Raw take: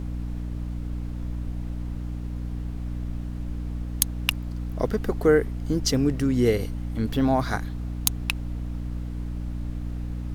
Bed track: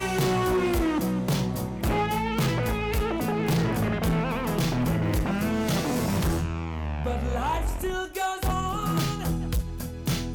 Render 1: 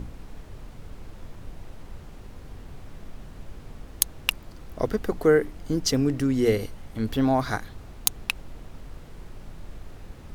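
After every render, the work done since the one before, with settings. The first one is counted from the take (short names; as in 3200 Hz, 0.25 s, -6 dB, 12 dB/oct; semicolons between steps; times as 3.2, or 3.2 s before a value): notches 60/120/180/240/300 Hz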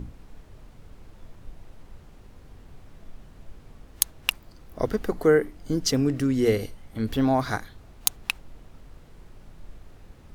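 noise print and reduce 6 dB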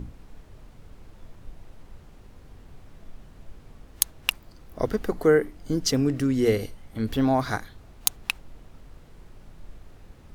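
nothing audible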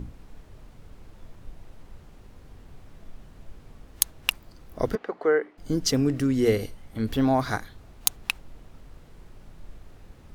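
4.95–5.58 BPF 460–2600 Hz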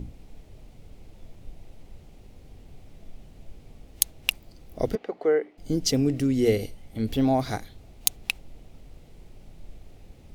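band shelf 1300 Hz -8.5 dB 1.1 oct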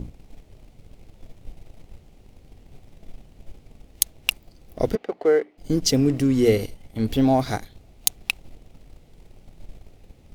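sample leveller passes 1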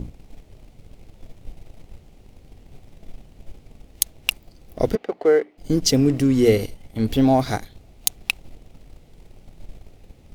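gain +2 dB; limiter -2 dBFS, peak gain reduction 2.5 dB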